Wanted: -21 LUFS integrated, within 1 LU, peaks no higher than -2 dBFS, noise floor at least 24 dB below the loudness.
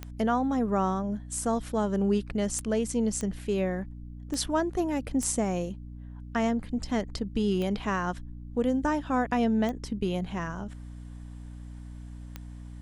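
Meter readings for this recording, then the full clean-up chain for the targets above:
clicks 8; hum 60 Hz; harmonics up to 300 Hz; hum level -39 dBFS; loudness -29.0 LUFS; peak -13.0 dBFS; loudness target -21.0 LUFS
-> de-click; notches 60/120/180/240/300 Hz; gain +8 dB

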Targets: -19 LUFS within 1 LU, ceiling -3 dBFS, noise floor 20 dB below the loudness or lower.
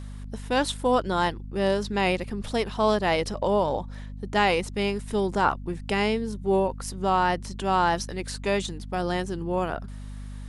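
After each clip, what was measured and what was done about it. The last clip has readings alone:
hum 50 Hz; harmonics up to 250 Hz; hum level -35 dBFS; loudness -26.0 LUFS; peak -9.0 dBFS; loudness target -19.0 LUFS
-> notches 50/100/150/200/250 Hz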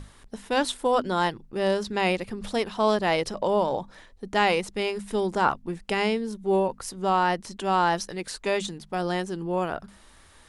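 hum none; loudness -26.5 LUFS; peak -9.0 dBFS; loudness target -19.0 LUFS
-> gain +7.5 dB; limiter -3 dBFS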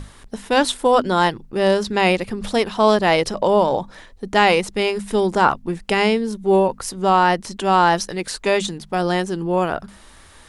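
loudness -19.0 LUFS; peak -3.0 dBFS; noise floor -46 dBFS

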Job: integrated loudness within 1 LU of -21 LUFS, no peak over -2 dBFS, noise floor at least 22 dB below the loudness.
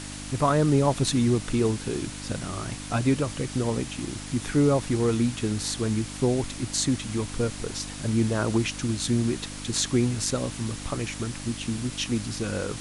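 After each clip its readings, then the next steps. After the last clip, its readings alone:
hum 50 Hz; harmonics up to 300 Hz; hum level -37 dBFS; noise floor -38 dBFS; noise floor target -49 dBFS; loudness -26.5 LUFS; peak -9.0 dBFS; loudness target -21.0 LUFS
-> de-hum 50 Hz, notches 6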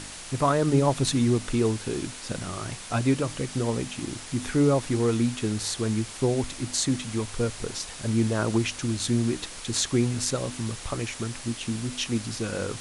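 hum none; noise floor -40 dBFS; noise floor target -49 dBFS
-> noise print and reduce 9 dB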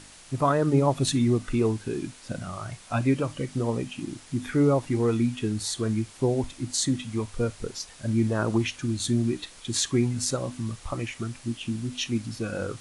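noise floor -49 dBFS; noise floor target -50 dBFS
-> noise print and reduce 6 dB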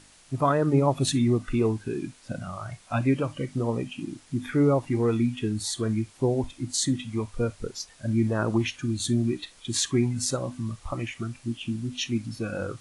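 noise floor -55 dBFS; loudness -27.5 LUFS; peak -9.0 dBFS; loudness target -21.0 LUFS
-> gain +6.5 dB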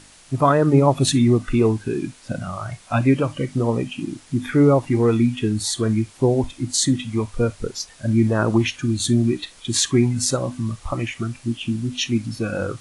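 loudness -21.0 LUFS; peak -2.5 dBFS; noise floor -48 dBFS

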